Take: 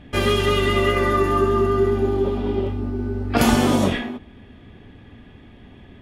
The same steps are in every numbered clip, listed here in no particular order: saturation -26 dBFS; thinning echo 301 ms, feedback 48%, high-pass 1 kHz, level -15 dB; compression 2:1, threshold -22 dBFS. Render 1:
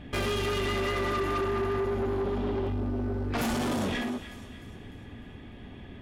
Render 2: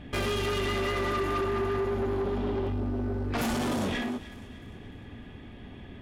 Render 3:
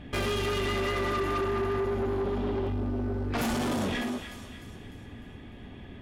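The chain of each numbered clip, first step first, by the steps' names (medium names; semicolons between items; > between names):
compression > thinning echo > saturation; compression > saturation > thinning echo; thinning echo > compression > saturation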